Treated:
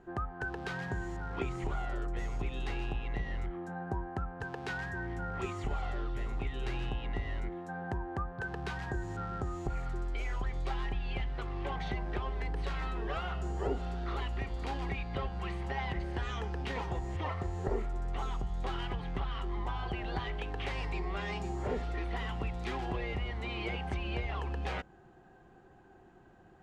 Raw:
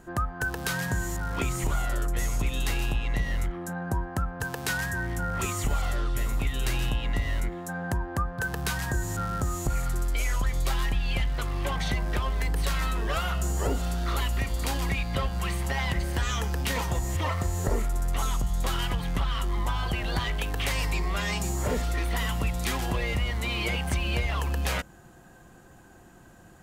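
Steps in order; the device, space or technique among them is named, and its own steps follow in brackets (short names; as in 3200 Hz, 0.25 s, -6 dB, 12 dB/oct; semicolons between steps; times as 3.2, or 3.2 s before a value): inside a cardboard box (LPF 3300 Hz 12 dB/oct; small resonant body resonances 390/770 Hz, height 9 dB, ringing for 35 ms); gain -8.5 dB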